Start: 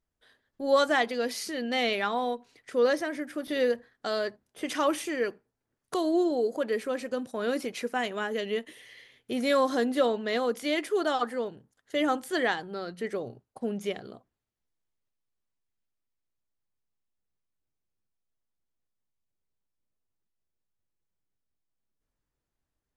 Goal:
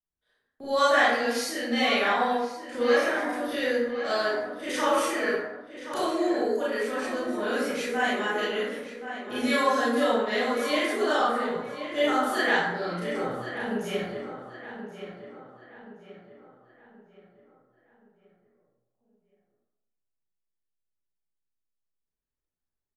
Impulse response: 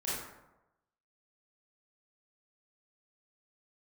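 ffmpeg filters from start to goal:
-filter_complex "[0:a]agate=range=-15dB:threshold=-46dB:ratio=16:detection=peak,acrossover=split=220|580|1600[a][b][c][d];[b]acompressor=threshold=-44dB:ratio=6[e];[a][e][c][d]amix=inputs=4:normalize=0,asplit=2[f][g];[g]adelay=1076,lowpass=f=3.1k:p=1,volume=-10dB,asplit=2[h][i];[i]adelay=1076,lowpass=f=3.1k:p=1,volume=0.44,asplit=2[j][k];[k]adelay=1076,lowpass=f=3.1k:p=1,volume=0.44,asplit=2[l][m];[m]adelay=1076,lowpass=f=3.1k:p=1,volume=0.44,asplit=2[n][o];[o]adelay=1076,lowpass=f=3.1k:p=1,volume=0.44[p];[f][h][j][l][n][p]amix=inputs=6:normalize=0[q];[1:a]atrim=start_sample=2205[r];[q][r]afir=irnorm=-1:irlink=0,volume=1dB"

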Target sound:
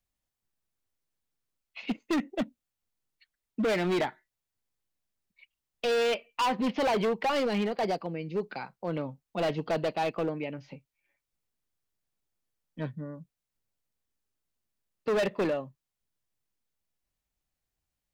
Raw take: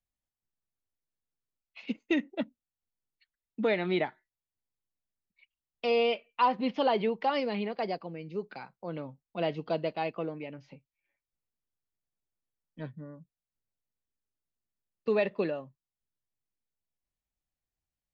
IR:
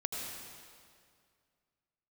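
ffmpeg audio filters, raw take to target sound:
-af "asoftclip=type=hard:threshold=-29.5dB,volume=5.5dB"

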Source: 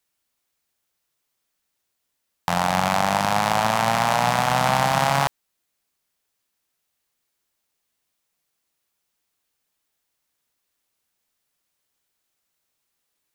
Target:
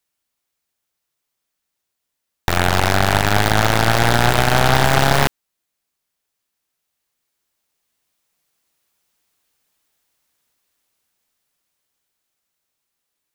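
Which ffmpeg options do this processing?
-af "aeval=exprs='0.708*(cos(1*acos(clip(val(0)/0.708,-1,1)))-cos(1*PI/2))+0.355*(cos(8*acos(clip(val(0)/0.708,-1,1)))-cos(8*PI/2))':c=same,dynaudnorm=f=330:g=17:m=8.5dB,volume=-1dB"

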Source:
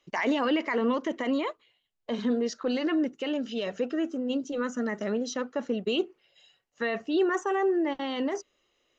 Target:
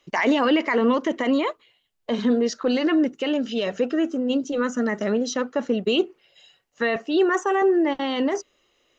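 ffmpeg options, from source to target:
-filter_complex "[0:a]asettb=1/sr,asplit=3[a][b][c];[a]atrim=end=6.964[d];[b]atrim=start=6.96:end=7.62,asetpts=PTS-STARTPTS,afade=t=in:d=0.004:c=qsin,afade=t=out:st=0.656:d=0.004:c=qsin,highpass=280[e];[c]atrim=start=7.616[f];[d][e]acrossfade=d=0.004:c1=hsin:c2=qsin[g];[g][f]acrossfade=d=0.004:c1=qsin:c2=hsin,volume=6.5dB"

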